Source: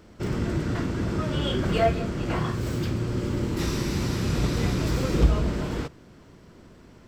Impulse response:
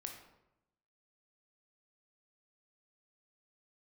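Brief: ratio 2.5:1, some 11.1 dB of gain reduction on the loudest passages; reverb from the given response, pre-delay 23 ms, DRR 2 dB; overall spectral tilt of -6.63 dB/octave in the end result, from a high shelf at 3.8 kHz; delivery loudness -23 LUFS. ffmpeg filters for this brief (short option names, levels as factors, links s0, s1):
-filter_complex "[0:a]highshelf=f=3800:g=-9,acompressor=threshold=0.0316:ratio=2.5,asplit=2[s0][s1];[1:a]atrim=start_sample=2205,adelay=23[s2];[s1][s2]afir=irnorm=-1:irlink=0,volume=1.12[s3];[s0][s3]amix=inputs=2:normalize=0,volume=2.51"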